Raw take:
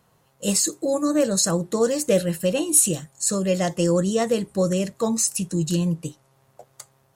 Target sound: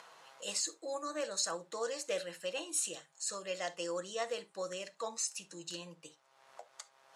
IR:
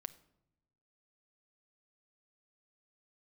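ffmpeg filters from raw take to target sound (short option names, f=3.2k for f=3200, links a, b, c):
-filter_complex "[0:a]acompressor=mode=upward:threshold=-27dB:ratio=2.5,highpass=790,lowpass=5.8k[a];[1:a]atrim=start_sample=2205,atrim=end_sample=3528[b];[a][b]afir=irnorm=-1:irlink=0,volume=-4.5dB"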